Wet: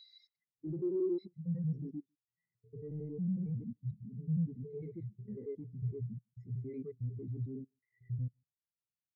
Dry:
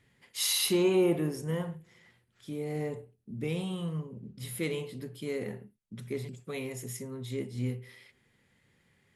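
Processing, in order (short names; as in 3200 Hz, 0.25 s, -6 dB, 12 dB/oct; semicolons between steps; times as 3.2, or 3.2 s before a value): slices in reverse order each 91 ms, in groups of 7; in parallel at 0 dB: negative-ratio compressor -37 dBFS, ratio -1; on the sum: fixed phaser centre 2900 Hz, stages 6; soft clip -32.5 dBFS, distortion -9 dB; air absorption 130 m; on a send: echo 0.151 s -17 dB; on the sum: spectral expander 2.5:1; gain +5 dB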